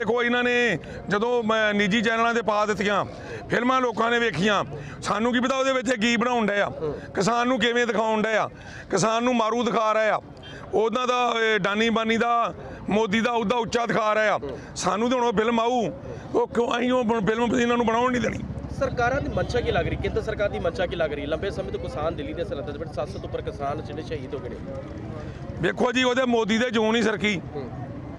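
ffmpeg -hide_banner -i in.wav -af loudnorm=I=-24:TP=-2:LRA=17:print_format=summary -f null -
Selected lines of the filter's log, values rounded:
Input Integrated:    -23.7 LUFS
Input True Peak:      -9.2 dBTP
Input LRA:             5.3 LU
Input Threshold:     -34.0 LUFS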